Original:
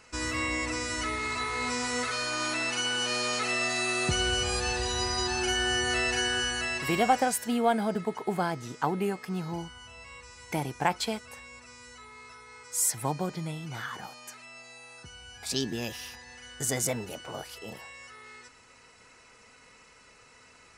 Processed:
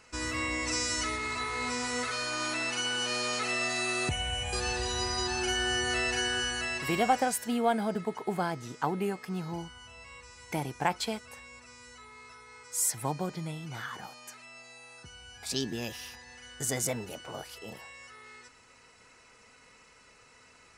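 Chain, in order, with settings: 0.65–1.16 bell 6000 Hz +11 dB -> +5 dB 1.4 oct; 4.09–4.53 fixed phaser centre 1300 Hz, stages 6; gain -2 dB

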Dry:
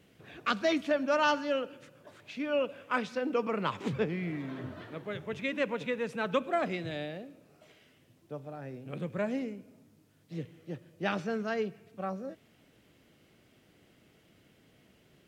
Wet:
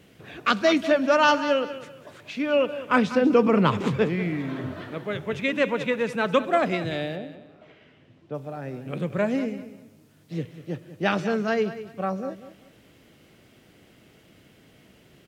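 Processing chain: 2.87–3.83 low shelf 330 Hz +10.5 dB; 7.15–8.33 LPF 1800 Hz -> 3600 Hz 12 dB/oct; on a send: feedback echo 0.194 s, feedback 26%, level -13.5 dB; on the sum: gain +8 dB

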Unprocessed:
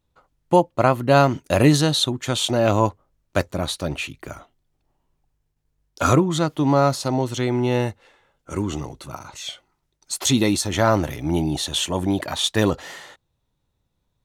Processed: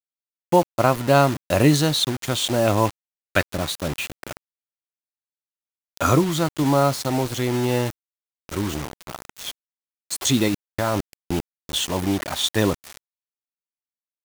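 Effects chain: 2.85–3.55 band shelf 2300 Hz +8.5 dB; 10.48–11.69 level quantiser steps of 21 dB; bit-crush 5-bit; gain -1 dB

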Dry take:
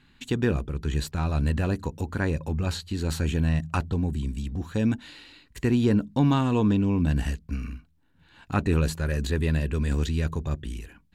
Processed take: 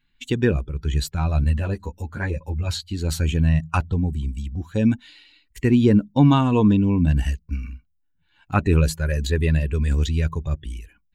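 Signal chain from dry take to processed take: per-bin expansion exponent 1.5; 1.44–2.7 ensemble effect; gain +7.5 dB

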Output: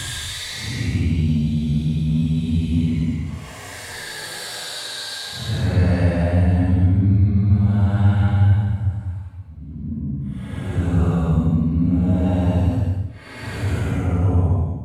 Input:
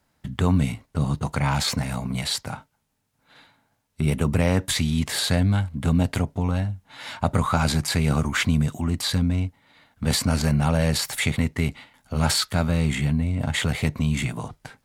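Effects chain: high shelf 2200 Hz -10 dB; Paulstretch 9.4×, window 0.10 s, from 4.7; bell 100 Hz +4.5 dB 0.67 oct; in parallel at -12 dB: soft clip -23.5 dBFS, distortion -7 dB

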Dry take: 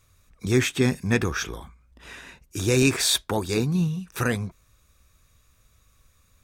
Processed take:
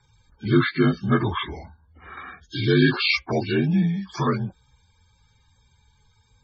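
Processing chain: inharmonic rescaling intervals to 82%; loudest bins only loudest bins 64; 2.17–4.16 mismatched tape noise reduction encoder only; gain +3.5 dB

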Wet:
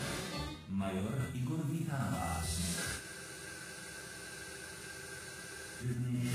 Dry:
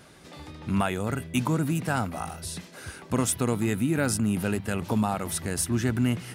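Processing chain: harmonic-percussive split percussive -14 dB; in parallel at -2 dB: level quantiser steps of 16 dB; on the sum: thin delay 0.139 s, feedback 71%, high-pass 3700 Hz, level -5.5 dB; reverb, pre-delay 3 ms, DRR -2.5 dB; reverse; compressor 20:1, threshold -47 dBFS, peak gain reduction 34 dB; reverse; spectral freeze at 3.01, 2.81 s; gain +13.5 dB; Vorbis 48 kbps 44100 Hz

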